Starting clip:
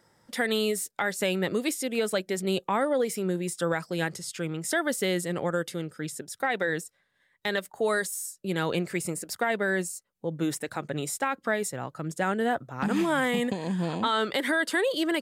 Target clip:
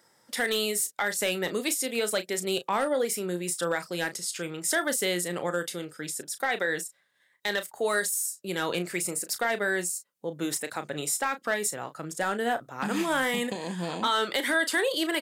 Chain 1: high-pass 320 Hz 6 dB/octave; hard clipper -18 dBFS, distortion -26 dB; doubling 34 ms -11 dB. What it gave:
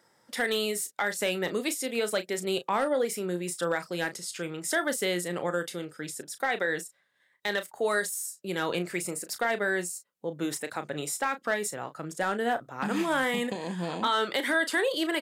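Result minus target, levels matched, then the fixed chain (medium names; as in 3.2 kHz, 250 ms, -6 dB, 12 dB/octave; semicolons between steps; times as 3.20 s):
8 kHz band -3.5 dB
high-pass 320 Hz 6 dB/octave; treble shelf 4 kHz +6 dB; hard clipper -18 dBFS, distortion -23 dB; doubling 34 ms -11 dB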